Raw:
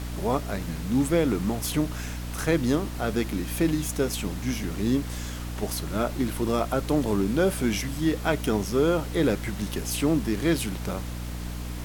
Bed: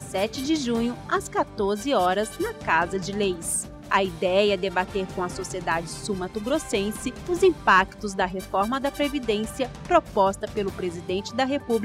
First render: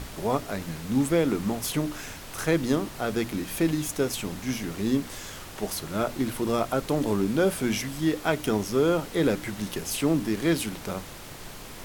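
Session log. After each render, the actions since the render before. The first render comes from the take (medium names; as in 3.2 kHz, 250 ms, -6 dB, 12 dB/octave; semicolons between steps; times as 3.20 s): hum notches 60/120/180/240/300 Hz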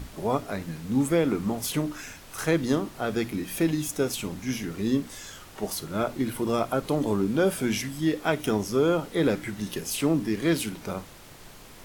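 noise print and reduce 6 dB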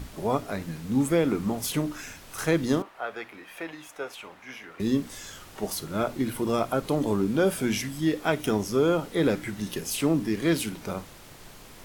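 2.82–4.80 s: three-band isolator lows -24 dB, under 540 Hz, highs -17 dB, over 2.8 kHz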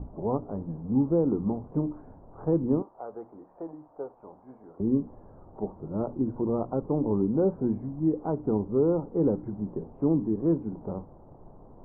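steep low-pass 930 Hz 36 dB/octave; dynamic bell 660 Hz, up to -8 dB, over -44 dBFS, Q 3.6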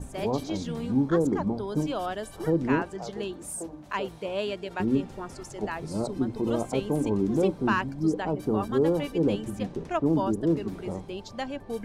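add bed -10 dB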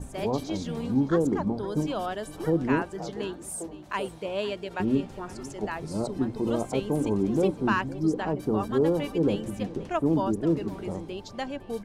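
delay 512 ms -18 dB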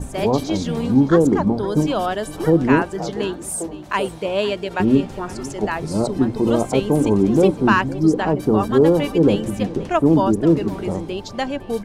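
trim +9.5 dB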